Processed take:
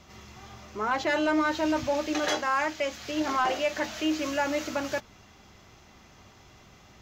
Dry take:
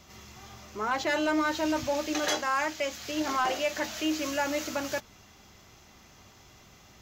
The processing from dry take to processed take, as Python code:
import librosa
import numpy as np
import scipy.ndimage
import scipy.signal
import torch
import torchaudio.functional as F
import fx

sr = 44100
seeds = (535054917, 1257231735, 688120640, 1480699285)

y = fx.lowpass(x, sr, hz=4000.0, slope=6)
y = F.gain(torch.from_numpy(y), 2.0).numpy()